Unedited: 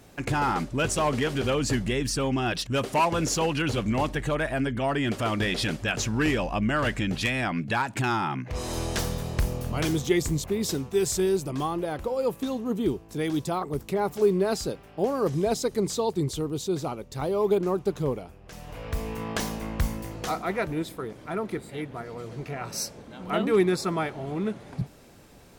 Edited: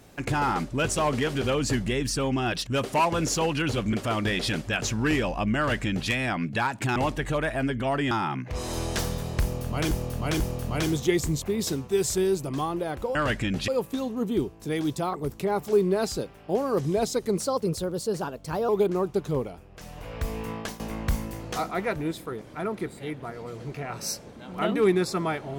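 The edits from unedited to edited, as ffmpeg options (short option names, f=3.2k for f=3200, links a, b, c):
-filter_complex "[0:a]asplit=11[a][b][c][d][e][f][g][h][i][j][k];[a]atrim=end=3.932[l];[b]atrim=start=5.078:end=8.112[m];[c]atrim=start=3.928:end=5.082[n];[d]atrim=start=8.108:end=9.912[o];[e]atrim=start=9.418:end=9.912[p];[f]atrim=start=9.418:end=12.172[q];[g]atrim=start=6.718:end=7.252[r];[h]atrim=start=12.168:end=15.864[s];[i]atrim=start=15.86:end=17.4,asetpts=PTS-STARTPTS,asetrate=51597,aresample=44100,atrim=end_sample=58046,asetpts=PTS-STARTPTS[t];[j]atrim=start=17.396:end=19.51,asetpts=PTS-STARTPTS,afade=t=out:st=1.824:d=0.29:silence=0.158489[u];[k]atrim=start=19.51,asetpts=PTS-STARTPTS,afade=t=in:d=0.004:c=hsin:silence=0.158489[v];[l][m]acrossfade=d=0.004:c1=hsin:c2=hsin[w];[w][n]acrossfade=d=0.004:c1=hsin:c2=hsin[x];[x][o]acrossfade=d=0.004:c1=hsin:c2=hsin[y];[y][p]acrossfade=d=0.004:c1=hsin:c2=hsin[z];[z][q]acrossfade=d=0.004:c1=hsin:c2=hsin[aa];[aa][r]acrossfade=d=0.004:c1=hsin:c2=hsin[ab];[ab][s]acrossfade=d=0.004:c1=hsin:c2=hsin[ac];[ac][t]acrossfade=d=0.004:c1=hsin:c2=hsin[ad];[u][v]concat=n=2:v=0:a=1[ae];[ad][ae]acrossfade=d=0.004:c1=hsin:c2=hsin"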